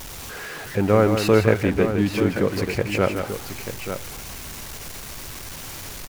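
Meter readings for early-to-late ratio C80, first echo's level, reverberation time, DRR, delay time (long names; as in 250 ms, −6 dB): no reverb audible, −7.5 dB, no reverb audible, no reverb audible, 161 ms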